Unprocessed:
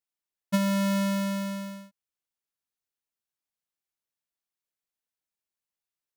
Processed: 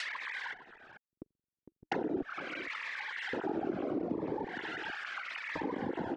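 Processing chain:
three sine waves on the formant tracks
in parallel at −8 dB: slack as between gear wheels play −38 dBFS
0:01.04–0:01.83: on the sum: flutter between parallel walls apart 7.6 metres, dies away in 0.68 s
noise gate with hold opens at −54 dBFS
sine wavefolder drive 10 dB, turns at −22.5 dBFS
auto-filter high-pass square 0.45 Hz 330–1,800 Hz
on a send: single-tap delay 457 ms −8.5 dB
on the sum: compressor whose output falls as the input rises −33 dBFS, ratio −1
spectral tilt −2.5 dB per octave
treble cut that deepens with the level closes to 350 Hz, closed at −30 dBFS
phaser whose notches keep moving one way falling 0.74 Hz
level +5 dB

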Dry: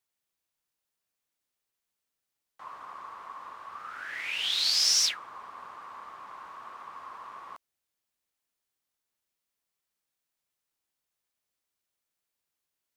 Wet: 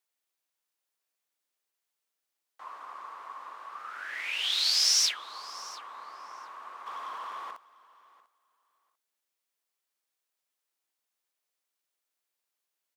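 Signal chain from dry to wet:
0:06.86–0:07.51: leveller curve on the samples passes 2
high-pass filter 340 Hz 12 dB per octave
repeating echo 695 ms, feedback 16%, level −20.5 dB

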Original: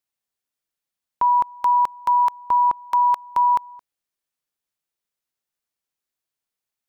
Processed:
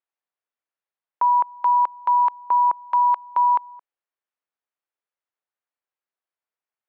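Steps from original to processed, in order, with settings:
band-pass filter 450–2,000 Hz

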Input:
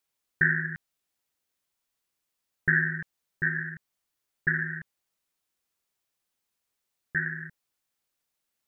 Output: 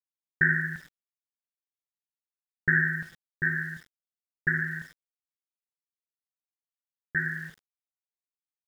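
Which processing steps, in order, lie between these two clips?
reverb whose tail is shaped and stops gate 160 ms flat, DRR 9 dB
centre clipping without the shift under −48.5 dBFS

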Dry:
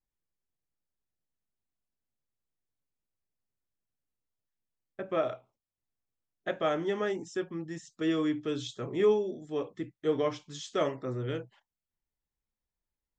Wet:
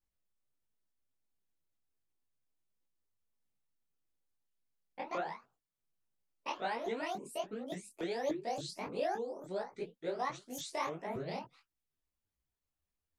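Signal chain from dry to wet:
pitch shifter swept by a sawtooth +12 semitones, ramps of 286 ms
downward compressor 2 to 1, threshold −39 dBFS, peak gain reduction 9.5 dB
micro pitch shift up and down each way 50 cents
level +4 dB

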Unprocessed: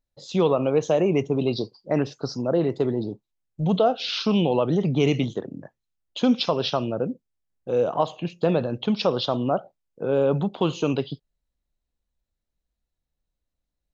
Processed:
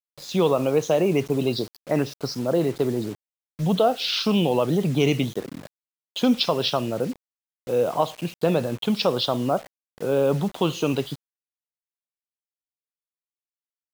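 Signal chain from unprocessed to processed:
high-shelf EQ 2,300 Hz +4.5 dB
bit reduction 7 bits

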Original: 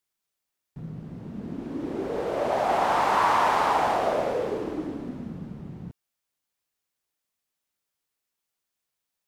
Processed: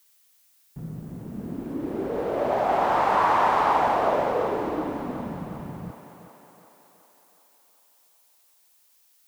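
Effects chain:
high-shelf EQ 3,200 Hz −10.5 dB
feedback echo with a high-pass in the loop 370 ms, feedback 62%, high-pass 280 Hz, level −8.5 dB
background noise blue −63 dBFS
level +1.5 dB

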